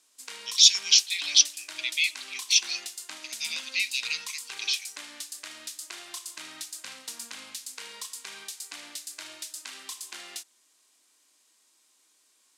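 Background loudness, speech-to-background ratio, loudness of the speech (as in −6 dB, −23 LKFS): −38.5 LKFS, 15.5 dB, −23.0 LKFS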